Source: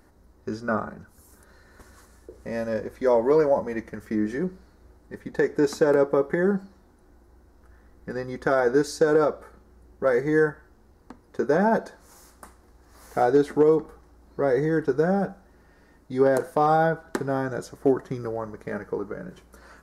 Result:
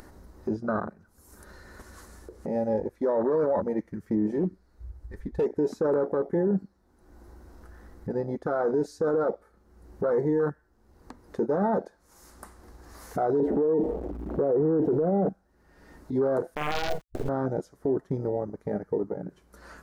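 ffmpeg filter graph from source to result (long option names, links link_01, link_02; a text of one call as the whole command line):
ffmpeg -i in.wav -filter_complex "[0:a]asettb=1/sr,asplit=3[link_01][link_02][link_03];[link_01]atrim=end=4.334[link_04];[link_02]atrim=start=4.33:end=5.46,asetpts=PTS-STARTPTS,afade=type=in:duration=0.004:curve=qsin,afade=type=out:start_time=1.126:duration=0.004:curve=qsin,asubboost=boost=9.5:cutoff=82,asoftclip=type=hard:threshold=-23dB[link_05];[link_03]atrim=start=5.456[link_06];[link_04][link_05]acrossfade=duration=0.004:curve1=hsin:curve2=qsin[link_07];[link_07][link_06]acrossfade=duration=0.004:curve1=qsin:curve2=hsin,asettb=1/sr,asplit=3[link_08][link_09][link_10];[link_08]atrim=end=13.404[link_11];[link_09]atrim=start=13.4:end=15.29,asetpts=PTS-STARTPTS,afade=type=in:duration=0.004:curve=qsin,afade=type=out:start_time=1.886:duration=0.004:curve=qsin,aeval=exprs='val(0)+0.5*0.0133*sgn(val(0))':channel_layout=same,equalizer=frequency=440:width=0.31:gain=11.5,acrossover=split=810|2400[link_12][link_13][link_14];[link_12]acompressor=threshold=-10dB:ratio=4[link_15];[link_13]acompressor=threshold=-38dB:ratio=4[link_16];[link_14]acompressor=threshold=-56dB:ratio=4[link_17];[link_15][link_16][link_17]amix=inputs=3:normalize=0[link_18];[link_10]atrim=start=15.286[link_19];[link_11][link_18]acrossfade=duration=0.004:curve1=hsin:curve2=qsin[link_20];[link_20][link_19]acrossfade=duration=0.004:curve1=qsin:curve2=hsin,asettb=1/sr,asplit=3[link_21][link_22][link_23];[link_21]atrim=end=16.554[link_24];[link_22]atrim=start=16.55:end=17.29,asetpts=PTS-STARTPTS,afade=type=in:duration=0.004:curve=qsin,afade=type=out:start_time=0.736:duration=0.004:curve=qsin,acrusher=bits=3:dc=4:mix=0:aa=0.000001,asplit=2[link_25][link_26];[link_26]adelay=46,volume=-3dB[link_27];[link_25][link_27]amix=inputs=2:normalize=0,atrim=end_sample=32634[link_28];[link_23]atrim=start=17.286[link_29];[link_24][link_28]acrossfade=duration=0.004:curve1=hsin:curve2=qsin[link_30];[link_30][link_29]acrossfade=duration=0.004:curve1=qsin:curve2=hsin,afwtdn=0.0501,alimiter=limit=-20.5dB:level=0:latency=1:release=12,acompressor=mode=upward:threshold=-34dB:ratio=2.5,volume=2.5dB" out.wav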